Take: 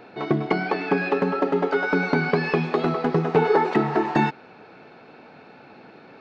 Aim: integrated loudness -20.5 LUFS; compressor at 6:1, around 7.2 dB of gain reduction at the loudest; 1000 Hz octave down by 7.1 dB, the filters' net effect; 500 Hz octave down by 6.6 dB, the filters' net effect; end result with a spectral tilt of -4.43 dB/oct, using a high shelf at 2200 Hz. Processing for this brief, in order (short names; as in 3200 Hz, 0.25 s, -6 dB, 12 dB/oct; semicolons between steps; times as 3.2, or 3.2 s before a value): bell 500 Hz -7.5 dB; bell 1000 Hz -7.5 dB; high shelf 2200 Hz +4 dB; compressor 6:1, threshold -27 dBFS; gain +11 dB